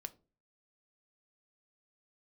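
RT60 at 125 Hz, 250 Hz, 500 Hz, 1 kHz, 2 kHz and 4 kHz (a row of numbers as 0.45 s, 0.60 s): 0.60 s, 0.45 s, 0.40 s, 0.30 s, 0.25 s, 0.20 s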